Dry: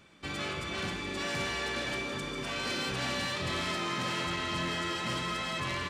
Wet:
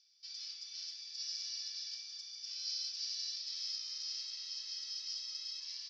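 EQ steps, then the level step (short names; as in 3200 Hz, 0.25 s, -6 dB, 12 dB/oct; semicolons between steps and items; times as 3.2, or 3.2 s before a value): Butterworth band-pass 5200 Hz, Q 5.2; air absorption 130 m; +14.5 dB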